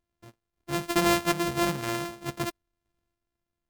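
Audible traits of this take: a buzz of ramps at a fixed pitch in blocks of 128 samples; random-step tremolo; MP3

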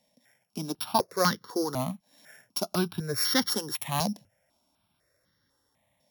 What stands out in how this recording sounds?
a buzz of ramps at a fixed pitch in blocks of 8 samples; notches that jump at a steady rate 4 Hz 370–2500 Hz

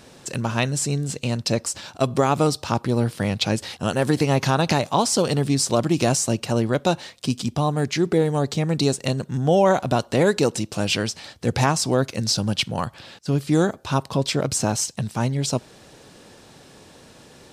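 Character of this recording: noise floor -49 dBFS; spectral tilt -5.0 dB/oct

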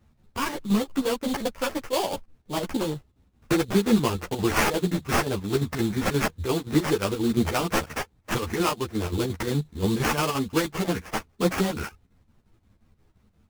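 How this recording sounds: aliases and images of a low sample rate 3900 Hz, jitter 20%; chopped level 5.7 Hz, depth 60%, duty 70%; a shimmering, thickened sound

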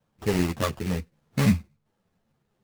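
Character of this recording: aliases and images of a low sample rate 2300 Hz, jitter 20%; a shimmering, thickened sound

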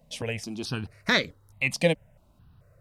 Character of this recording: notches that jump at a steady rate 4.6 Hz 370–2800 Hz

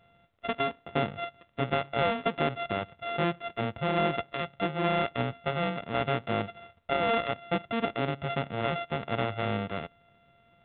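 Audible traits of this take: a buzz of ramps at a fixed pitch in blocks of 64 samples; µ-law

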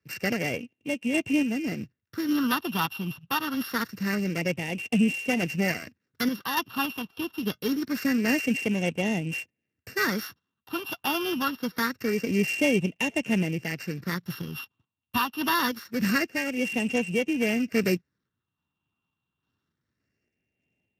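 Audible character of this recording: a buzz of ramps at a fixed pitch in blocks of 16 samples; phasing stages 6, 0.25 Hz, lowest notch 550–1200 Hz; random-step tremolo; Speex

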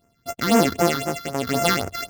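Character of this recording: a buzz of ramps at a fixed pitch in blocks of 64 samples; phasing stages 6, 3.9 Hz, lowest notch 640–4000 Hz; random-step tremolo 3.9 Hz, depth 90%

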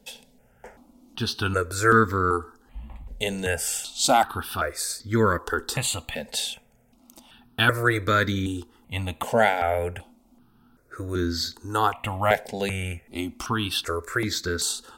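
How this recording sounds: notches that jump at a steady rate 2.6 Hz 330–2800 Hz

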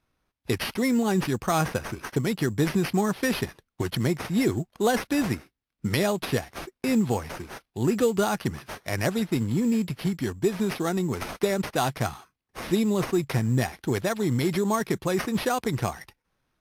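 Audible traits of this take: aliases and images of a low sample rate 7500 Hz, jitter 0%; Vorbis

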